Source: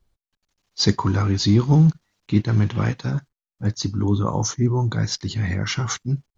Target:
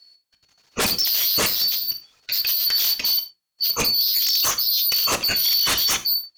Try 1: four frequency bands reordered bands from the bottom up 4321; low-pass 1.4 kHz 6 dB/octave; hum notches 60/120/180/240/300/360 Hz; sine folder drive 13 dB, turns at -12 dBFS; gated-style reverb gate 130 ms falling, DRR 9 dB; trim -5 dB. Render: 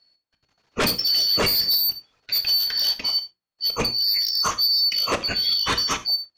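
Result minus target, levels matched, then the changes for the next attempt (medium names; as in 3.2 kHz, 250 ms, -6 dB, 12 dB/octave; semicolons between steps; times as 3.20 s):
1 kHz band +3.5 dB
remove: low-pass 1.4 kHz 6 dB/octave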